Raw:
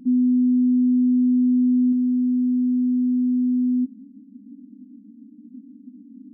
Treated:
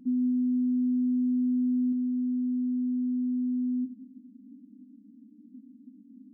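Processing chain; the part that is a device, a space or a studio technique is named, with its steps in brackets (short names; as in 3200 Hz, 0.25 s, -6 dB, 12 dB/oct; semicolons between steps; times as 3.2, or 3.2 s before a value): compressed reverb return (on a send at -11.5 dB: reverb RT60 1.6 s, pre-delay 4 ms + compressor, threshold -18 dBFS, peak gain reduction 4.5 dB); on the sum: gain -7.5 dB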